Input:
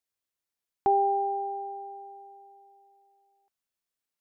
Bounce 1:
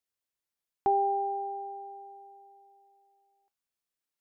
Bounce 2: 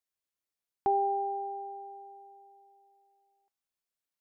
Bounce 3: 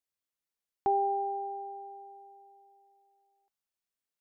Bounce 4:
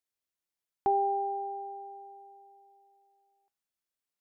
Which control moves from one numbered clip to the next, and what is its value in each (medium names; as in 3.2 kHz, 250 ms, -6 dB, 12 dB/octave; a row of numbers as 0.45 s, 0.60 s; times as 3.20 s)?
feedback comb, decay: 0.2 s, 0.97 s, 2.1 s, 0.46 s